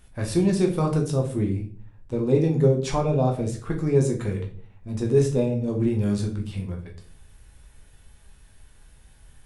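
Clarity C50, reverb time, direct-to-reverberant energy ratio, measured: 10.0 dB, 0.45 s, 1.0 dB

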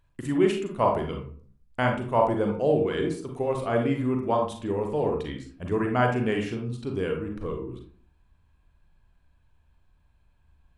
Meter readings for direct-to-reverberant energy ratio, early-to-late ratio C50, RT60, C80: 2.0 dB, 5.5 dB, 0.50 s, 11.0 dB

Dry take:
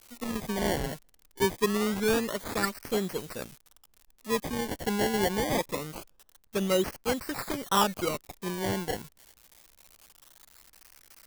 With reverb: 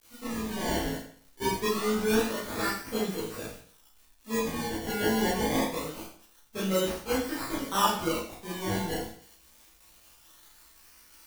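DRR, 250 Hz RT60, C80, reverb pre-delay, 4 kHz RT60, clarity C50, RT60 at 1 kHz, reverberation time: -9.5 dB, 0.55 s, 7.0 dB, 18 ms, 0.55 s, 3.0 dB, 0.55 s, 0.55 s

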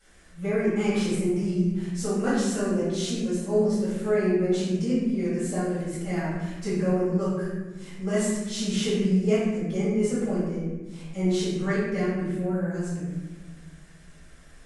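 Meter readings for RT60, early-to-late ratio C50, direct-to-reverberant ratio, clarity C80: 1.2 s, -1.0 dB, -12.0 dB, 2.0 dB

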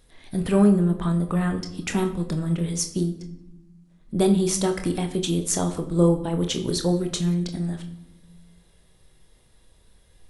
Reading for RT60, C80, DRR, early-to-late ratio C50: 0.90 s, 14.5 dB, 5.0 dB, 11.0 dB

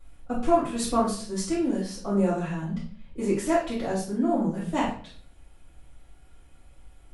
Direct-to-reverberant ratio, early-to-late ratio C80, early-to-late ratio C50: -10.0 dB, 10.0 dB, 4.5 dB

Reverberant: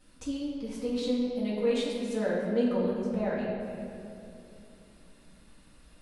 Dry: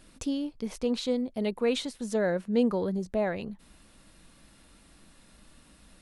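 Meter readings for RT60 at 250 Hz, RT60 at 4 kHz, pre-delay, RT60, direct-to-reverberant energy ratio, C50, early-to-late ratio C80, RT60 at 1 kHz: 3.6 s, 1.7 s, 4 ms, 2.8 s, -10.0 dB, 0.0 dB, 1.5 dB, 2.6 s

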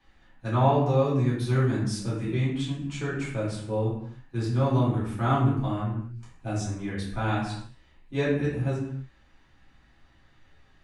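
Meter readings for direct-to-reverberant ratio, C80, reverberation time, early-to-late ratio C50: -8.5 dB, 5.5 dB, no single decay rate, 2.0 dB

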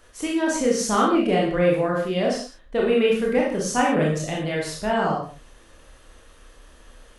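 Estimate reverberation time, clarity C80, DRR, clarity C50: no single decay rate, 6.5 dB, -3.5 dB, 2.5 dB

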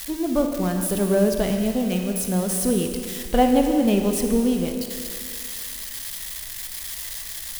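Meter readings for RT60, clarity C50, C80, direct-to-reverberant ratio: 2.2 s, 4.5 dB, 5.5 dB, 4.0 dB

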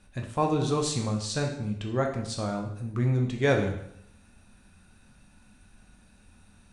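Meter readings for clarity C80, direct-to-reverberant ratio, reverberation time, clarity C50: 10.0 dB, 1.5 dB, 0.75 s, 7.0 dB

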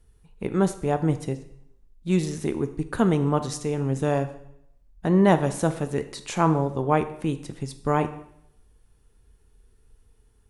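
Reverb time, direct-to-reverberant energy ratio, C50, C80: 0.75 s, 9.5 dB, 13.0 dB, 15.5 dB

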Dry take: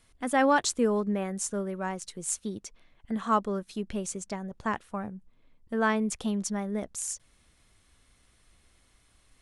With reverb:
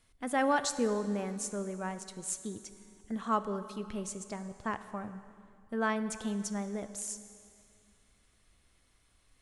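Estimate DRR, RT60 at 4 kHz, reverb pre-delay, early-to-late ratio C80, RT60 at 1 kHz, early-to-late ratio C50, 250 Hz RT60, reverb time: 10.5 dB, 2.2 s, 5 ms, 12.5 dB, 2.4 s, 12.0 dB, 2.4 s, 2.4 s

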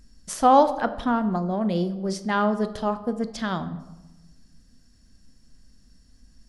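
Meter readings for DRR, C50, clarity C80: 10.0 dB, 14.0 dB, 15.5 dB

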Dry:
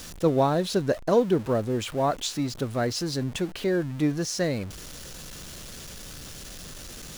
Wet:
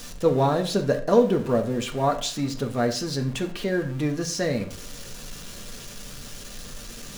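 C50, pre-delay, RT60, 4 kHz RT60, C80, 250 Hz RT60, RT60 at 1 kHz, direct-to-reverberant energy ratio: 11.5 dB, 4 ms, 0.50 s, 0.35 s, 15.5 dB, 0.60 s, 0.45 s, 3.0 dB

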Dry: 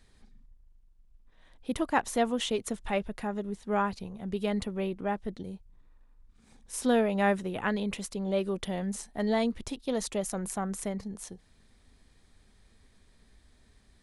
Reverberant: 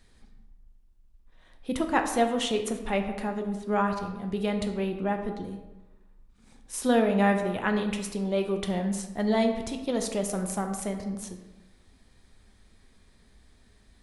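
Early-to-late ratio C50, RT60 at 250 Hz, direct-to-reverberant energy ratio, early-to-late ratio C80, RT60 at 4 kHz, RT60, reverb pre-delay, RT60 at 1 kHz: 7.5 dB, 1.1 s, 4.5 dB, 9.5 dB, 0.70 s, 1.1 s, 4 ms, 1.1 s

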